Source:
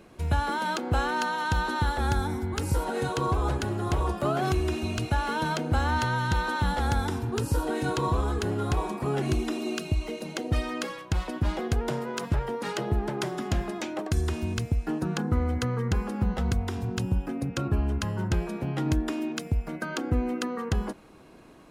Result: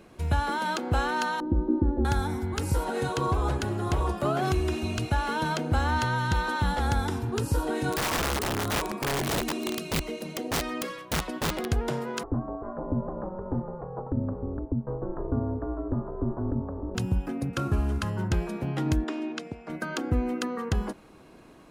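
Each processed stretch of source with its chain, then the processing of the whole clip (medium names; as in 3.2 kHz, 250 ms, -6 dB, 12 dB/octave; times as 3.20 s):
1.40–2.05 s: CVSD coder 32 kbps + resonant low-pass 340 Hz, resonance Q 3.4 + comb 3.5 ms, depth 57%
7.92–11.67 s: band-stop 830 Hz, Q 9.6 + integer overflow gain 22.5 dB
12.23–16.95 s: steep low-pass 1.1 kHz + ring modulator 180 Hz
17.53–18.10 s: CVSD coder 64 kbps + peaking EQ 1.3 kHz +5.5 dB 0.33 oct
19.04–19.70 s: high-pass 250 Hz + distance through air 93 m
whole clip: none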